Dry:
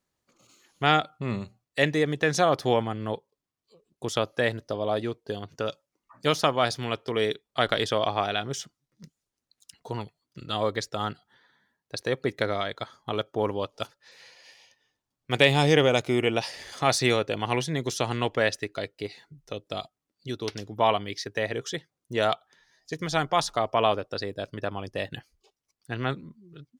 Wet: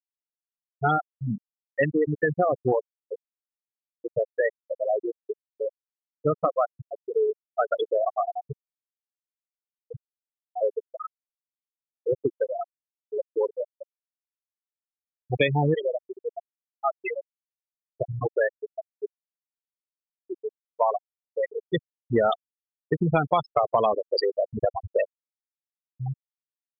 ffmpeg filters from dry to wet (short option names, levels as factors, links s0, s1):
-filter_complex "[0:a]asettb=1/sr,asplit=3[s0][s1][s2];[s0]atrim=end=15.744[s3];[s1]atrim=start=15.74:end=18.01,asetpts=PTS-STARTPTS,afade=t=in:d=0.004:c=qsin,afade=t=out:st=2.266:d=0.004:c=qsin,highpass=f=880:p=1[s4];[s2]atrim=start=18.006[s5];[s3][s4]acrossfade=d=0.004:c1=hsin:c2=qsin[s6];[s6][s5]acrossfade=d=0.004:c1=qsin:c2=hsin,asettb=1/sr,asplit=3[s7][s8][s9];[s7]atrim=end=21.724[s10];[s8]atrim=start=21.72:end=25.07,asetpts=PTS-STARTPTS,afade=t=in:d=0.004:c=qsin,afade=t=out:st=3.346:d=0.004:c=qsin,acontrast=87[s11];[s9]atrim=start=25.066[s12];[s10][s11]acrossfade=d=0.004:c1=hsin:c2=qsin[s13];[s13][s12]acrossfade=d=0.004:c1=qsin:c2=hsin,afftfilt=real='re*gte(hypot(re,im),0.282)':imag='im*gte(hypot(re,im),0.282)':win_size=1024:overlap=0.75,acompressor=threshold=0.0631:ratio=6,volume=1.88"